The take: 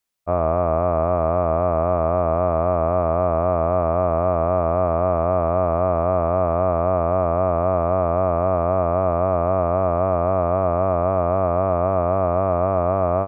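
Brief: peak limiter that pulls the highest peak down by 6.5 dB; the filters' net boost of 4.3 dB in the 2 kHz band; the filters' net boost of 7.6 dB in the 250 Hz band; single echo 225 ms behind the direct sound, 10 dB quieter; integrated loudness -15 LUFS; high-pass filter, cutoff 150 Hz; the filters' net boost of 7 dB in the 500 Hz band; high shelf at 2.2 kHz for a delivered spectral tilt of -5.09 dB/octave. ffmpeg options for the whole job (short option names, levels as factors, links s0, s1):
-af "highpass=150,equalizer=f=250:t=o:g=8.5,equalizer=f=500:t=o:g=8,equalizer=f=2000:t=o:g=8.5,highshelf=f=2200:g=-6,alimiter=limit=0.335:level=0:latency=1,aecho=1:1:225:0.316,volume=1.58"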